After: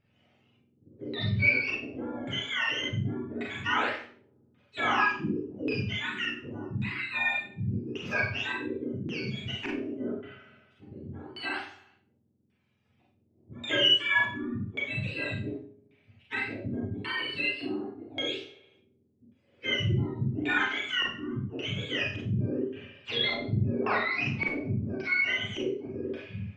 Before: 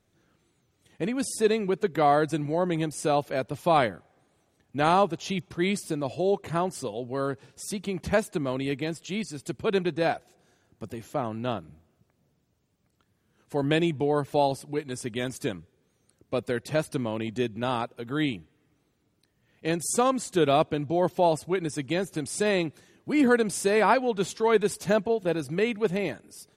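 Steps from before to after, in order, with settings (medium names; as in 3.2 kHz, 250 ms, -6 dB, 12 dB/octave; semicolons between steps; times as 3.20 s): spectrum inverted on a logarithmic axis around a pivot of 1 kHz; saturation -14 dBFS, distortion -20 dB; 13.73–14.31 s: rippled EQ curve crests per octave 1.3, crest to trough 14 dB; bucket-brigade echo 75 ms, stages 2048, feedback 66%, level -22 dB; LFO low-pass square 0.88 Hz 340–2600 Hz; Schroeder reverb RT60 0.39 s, combs from 30 ms, DRR -2.5 dB; in parallel at 0 dB: compression, threshold -31 dBFS, peak gain reduction 18.5 dB; on the sum: trim -8.5 dB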